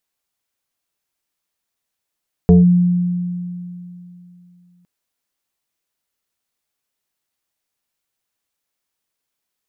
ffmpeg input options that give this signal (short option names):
-f lavfi -i "aevalsrc='0.596*pow(10,-3*t/2.98)*sin(2*PI*177*t+0.84*clip(1-t/0.16,0,1)*sin(2*PI*1.48*177*t))':d=2.36:s=44100"